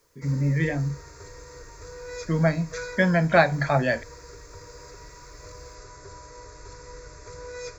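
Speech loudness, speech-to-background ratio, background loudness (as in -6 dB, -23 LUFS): -24.0 LUFS, 18.5 dB, -42.5 LUFS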